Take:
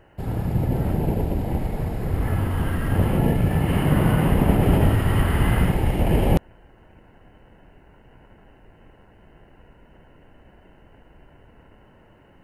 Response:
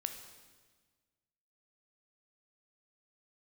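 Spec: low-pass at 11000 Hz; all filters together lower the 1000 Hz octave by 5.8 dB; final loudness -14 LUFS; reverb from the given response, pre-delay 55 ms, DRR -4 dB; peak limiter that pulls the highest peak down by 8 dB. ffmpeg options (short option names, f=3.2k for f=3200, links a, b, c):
-filter_complex "[0:a]lowpass=11k,equalizer=f=1k:t=o:g=-8,alimiter=limit=-12.5dB:level=0:latency=1,asplit=2[a][b];[1:a]atrim=start_sample=2205,adelay=55[c];[b][c]afir=irnorm=-1:irlink=0,volume=4.5dB[d];[a][d]amix=inputs=2:normalize=0,volume=4dB"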